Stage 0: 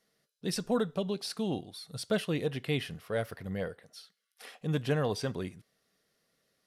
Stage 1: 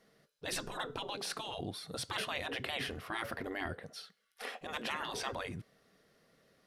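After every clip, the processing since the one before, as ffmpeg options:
-af "afftfilt=real='re*lt(hypot(re,im),0.0355)':imag='im*lt(hypot(re,im),0.0355)':win_size=1024:overlap=0.75,highshelf=f=3.1k:g=-11,volume=10dB"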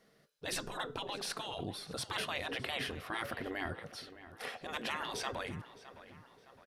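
-filter_complex "[0:a]asplit=2[a][b];[b]adelay=613,lowpass=f=3.1k:p=1,volume=-14.5dB,asplit=2[c][d];[d]adelay=613,lowpass=f=3.1k:p=1,volume=0.51,asplit=2[e][f];[f]adelay=613,lowpass=f=3.1k:p=1,volume=0.51,asplit=2[g][h];[h]adelay=613,lowpass=f=3.1k:p=1,volume=0.51,asplit=2[i][j];[j]adelay=613,lowpass=f=3.1k:p=1,volume=0.51[k];[a][c][e][g][i][k]amix=inputs=6:normalize=0"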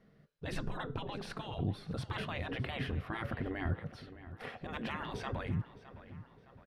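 -af "bass=f=250:g=14,treble=f=4k:g=-14,volume=-2dB"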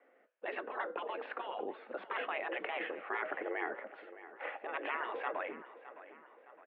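-af "highpass=f=340:t=q:w=0.5412,highpass=f=340:t=q:w=1.307,lowpass=f=2.6k:t=q:w=0.5176,lowpass=f=2.6k:t=q:w=0.7071,lowpass=f=2.6k:t=q:w=1.932,afreqshift=62,volume=4dB"

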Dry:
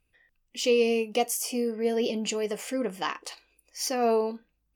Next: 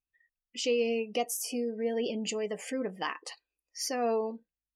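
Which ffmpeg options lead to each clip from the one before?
-filter_complex "[0:a]asplit=2[a][b];[b]acompressor=threshold=-33dB:ratio=6,volume=1dB[c];[a][c]amix=inputs=2:normalize=0,equalizer=f=1.8k:t=o:w=0.27:g=4,afftdn=nr=22:nf=-38,volume=-7.5dB"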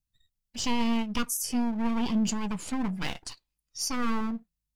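-filter_complex "[0:a]lowshelf=f=260:t=q:w=1.5:g=8,acrossover=split=320|3100[a][b][c];[b]aeval=exprs='abs(val(0))':c=same[d];[a][d][c]amix=inputs=3:normalize=0,volume=4dB"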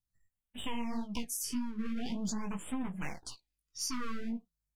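-af "flanger=delay=15.5:depth=5.5:speed=1.8,acompressor=threshold=-29dB:ratio=6,afftfilt=real='re*(1-between(b*sr/1024,630*pow(5500/630,0.5+0.5*sin(2*PI*0.45*pts/sr))/1.41,630*pow(5500/630,0.5+0.5*sin(2*PI*0.45*pts/sr))*1.41))':imag='im*(1-between(b*sr/1024,630*pow(5500/630,0.5+0.5*sin(2*PI*0.45*pts/sr))/1.41,630*pow(5500/630,0.5+0.5*sin(2*PI*0.45*pts/sr))*1.41))':win_size=1024:overlap=0.75,volume=-1.5dB"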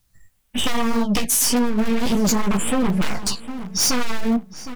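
-filter_complex "[0:a]asplit=2[a][b];[b]aeval=exprs='(mod(39.8*val(0)+1,2)-1)/39.8':c=same,volume=-6dB[c];[a][c]amix=inputs=2:normalize=0,asplit=2[d][e];[e]adelay=760,lowpass=f=2.6k:p=1,volume=-15.5dB,asplit=2[f][g];[g]adelay=760,lowpass=f=2.6k:p=1,volume=0.28,asplit=2[h][i];[i]adelay=760,lowpass=f=2.6k:p=1,volume=0.28[j];[d][f][h][j]amix=inputs=4:normalize=0,aeval=exprs='0.0891*sin(PI/2*3.16*val(0)/0.0891)':c=same,volume=6dB"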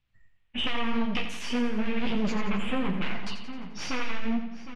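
-filter_complex "[0:a]flanger=delay=8.8:depth=5.6:regen=-55:speed=0.63:shape=sinusoidal,lowpass=f=2.7k:t=q:w=2.3,asplit=2[a][b];[b]aecho=0:1:87|174|261|348|435|522:0.355|0.192|0.103|0.0559|0.0302|0.0163[c];[a][c]amix=inputs=2:normalize=0,volume=-6dB"

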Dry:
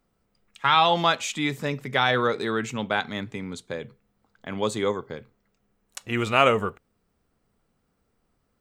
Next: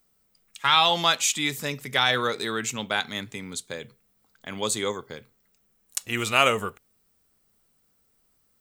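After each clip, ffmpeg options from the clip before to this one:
-af "crystalizer=i=5:c=0,volume=-4.5dB"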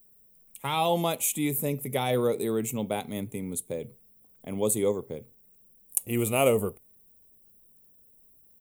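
-af "firequalizer=gain_entry='entry(500,0);entry(1600,-25);entry(2200,-13);entry(4800,-24);entry(10000,6)':delay=0.05:min_phase=1,volume=4dB"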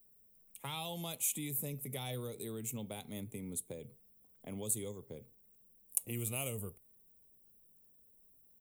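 -filter_complex "[0:a]acrossover=split=150|3000[a][b][c];[b]acompressor=threshold=-37dB:ratio=6[d];[a][d][c]amix=inputs=3:normalize=0,volume=-6.5dB"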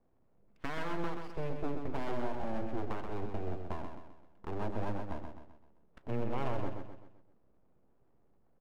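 -filter_complex "[0:a]lowpass=f=1.6k:w=0.5412,lowpass=f=1.6k:w=1.3066,aeval=exprs='abs(val(0))':c=same,asplit=2[a][b];[b]aecho=0:1:129|258|387|516|645:0.501|0.221|0.097|0.0427|0.0188[c];[a][c]amix=inputs=2:normalize=0,volume=8.5dB"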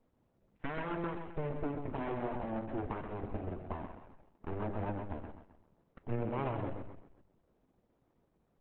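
-af "lowpass=f=3k:w=0.5412,lowpass=f=3k:w=1.3066,volume=2dB" -ar 48000 -c:a libopus -b:a 8k

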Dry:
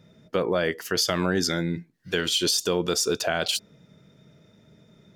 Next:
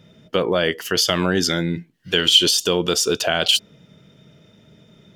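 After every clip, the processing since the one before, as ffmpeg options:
-af "equalizer=f=3k:w=4.5:g=10.5,volume=4.5dB"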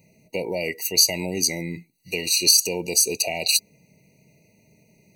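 -af "crystalizer=i=6.5:c=0,afftfilt=real='re*eq(mod(floor(b*sr/1024/960),2),0)':imag='im*eq(mod(floor(b*sr/1024/960),2),0)':win_size=1024:overlap=0.75,volume=-8.5dB"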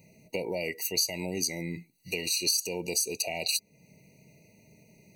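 -af "acompressor=threshold=-33dB:ratio=2"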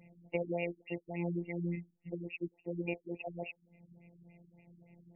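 -af "afftfilt=real='hypot(re,im)*cos(PI*b)':imag='0':win_size=1024:overlap=0.75,afftfilt=real='re*lt(b*sr/1024,310*pow(3300/310,0.5+0.5*sin(2*PI*3.5*pts/sr)))':imag='im*lt(b*sr/1024,310*pow(3300/310,0.5+0.5*sin(2*PI*3.5*pts/sr)))':win_size=1024:overlap=0.75,volume=1.5dB"

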